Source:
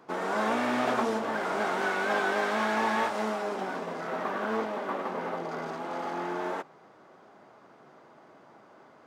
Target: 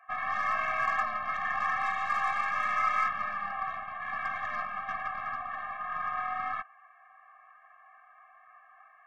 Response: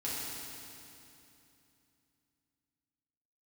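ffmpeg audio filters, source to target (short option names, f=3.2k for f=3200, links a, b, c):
-af "highpass=f=380:t=q:w=0.5412,highpass=f=380:t=q:w=1.307,lowpass=f=2.1k:t=q:w=0.5176,lowpass=f=2.1k:t=q:w=0.7071,lowpass=f=2.1k:t=q:w=1.932,afreqshift=390,aeval=exprs='0.168*(cos(1*acos(clip(val(0)/0.168,-1,1)))-cos(1*PI/2))+0.00473*(cos(8*acos(clip(val(0)/0.168,-1,1)))-cos(8*PI/2))':c=same,afftfilt=real='re*eq(mod(floor(b*sr/1024/260),2),0)':imag='im*eq(mod(floor(b*sr/1024/260),2),0)':win_size=1024:overlap=0.75,volume=3dB"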